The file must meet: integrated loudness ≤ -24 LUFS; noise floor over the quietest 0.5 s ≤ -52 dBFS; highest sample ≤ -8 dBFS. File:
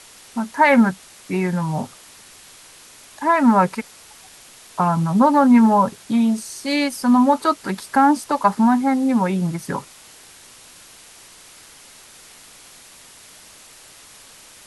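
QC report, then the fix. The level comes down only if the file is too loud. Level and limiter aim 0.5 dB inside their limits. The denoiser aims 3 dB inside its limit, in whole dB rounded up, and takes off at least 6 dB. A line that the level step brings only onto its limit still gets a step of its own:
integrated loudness -18.0 LUFS: fail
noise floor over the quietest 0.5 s -45 dBFS: fail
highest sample -4.5 dBFS: fail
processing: denoiser 6 dB, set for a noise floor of -45 dBFS; gain -6.5 dB

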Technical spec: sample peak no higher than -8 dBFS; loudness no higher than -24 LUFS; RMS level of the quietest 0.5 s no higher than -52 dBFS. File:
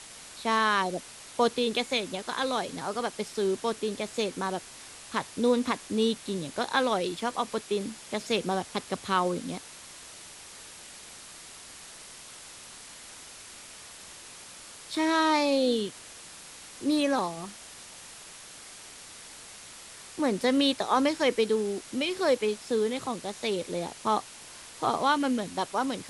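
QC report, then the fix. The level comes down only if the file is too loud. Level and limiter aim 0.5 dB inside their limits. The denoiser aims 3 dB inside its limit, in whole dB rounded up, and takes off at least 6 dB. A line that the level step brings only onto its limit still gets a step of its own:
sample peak -11.5 dBFS: OK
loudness -28.5 LUFS: OK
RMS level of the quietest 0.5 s -47 dBFS: fail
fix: denoiser 8 dB, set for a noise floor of -47 dBFS

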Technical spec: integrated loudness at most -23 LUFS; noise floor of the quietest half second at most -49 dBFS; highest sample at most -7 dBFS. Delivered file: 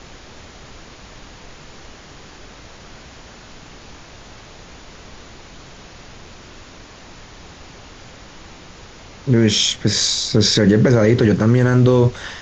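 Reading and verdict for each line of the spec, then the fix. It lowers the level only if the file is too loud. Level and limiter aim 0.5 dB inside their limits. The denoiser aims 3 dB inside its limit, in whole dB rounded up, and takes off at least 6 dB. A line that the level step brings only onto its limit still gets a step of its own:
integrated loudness -15.0 LUFS: fail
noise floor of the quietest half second -40 dBFS: fail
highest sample -4.0 dBFS: fail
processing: denoiser 6 dB, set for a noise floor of -40 dBFS; gain -8.5 dB

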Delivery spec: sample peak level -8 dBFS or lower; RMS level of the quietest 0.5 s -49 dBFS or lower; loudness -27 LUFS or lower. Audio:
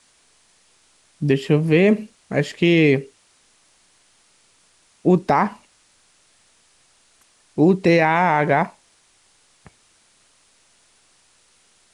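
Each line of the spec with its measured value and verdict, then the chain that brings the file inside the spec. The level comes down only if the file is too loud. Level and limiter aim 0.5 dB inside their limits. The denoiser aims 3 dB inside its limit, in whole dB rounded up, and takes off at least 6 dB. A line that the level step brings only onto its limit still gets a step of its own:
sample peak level -5.0 dBFS: fail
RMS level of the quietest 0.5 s -59 dBFS: OK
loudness -18.5 LUFS: fail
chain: gain -9 dB

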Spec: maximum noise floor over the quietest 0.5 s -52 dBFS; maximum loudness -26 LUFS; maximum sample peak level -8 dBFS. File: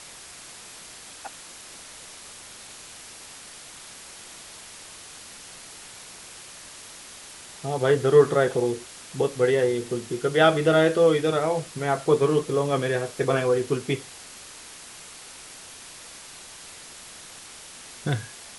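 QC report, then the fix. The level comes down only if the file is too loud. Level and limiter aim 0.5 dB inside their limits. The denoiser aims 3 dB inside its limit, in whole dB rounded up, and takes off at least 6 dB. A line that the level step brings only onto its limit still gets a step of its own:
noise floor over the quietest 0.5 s -44 dBFS: fail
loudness -23.0 LUFS: fail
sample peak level -5.5 dBFS: fail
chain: denoiser 8 dB, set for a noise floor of -44 dBFS; gain -3.5 dB

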